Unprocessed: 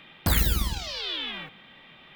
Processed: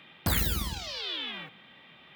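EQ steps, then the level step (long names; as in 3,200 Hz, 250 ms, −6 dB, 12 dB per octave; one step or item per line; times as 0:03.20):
high-pass filter 64 Hz
−3.0 dB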